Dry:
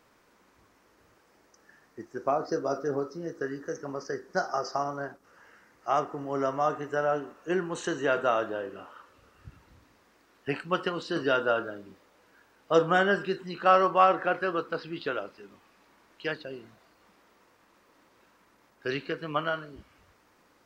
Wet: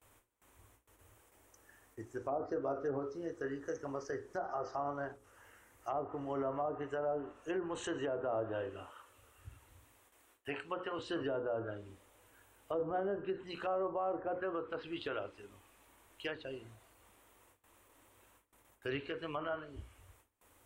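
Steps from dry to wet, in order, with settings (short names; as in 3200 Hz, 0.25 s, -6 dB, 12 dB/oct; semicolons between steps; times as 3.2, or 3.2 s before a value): gate with hold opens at -53 dBFS; notches 60/120/180/240/300/360/420/480/540 Hz; treble ducked by the level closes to 690 Hz, closed at -22.5 dBFS; 8.9–10.99 low shelf 230 Hz -9.5 dB; limiter -23.5 dBFS, peak gain reduction 11 dB; EQ curve 110 Hz 0 dB, 160 Hz -19 dB, 280 Hz -11 dB, 870 Hz -10 dB, 1500 Hz -13 dB, 3300 Hz -7 dB, 4800 Hz -18 dB, 8500 Hz +3 dB; gain +6.5 dB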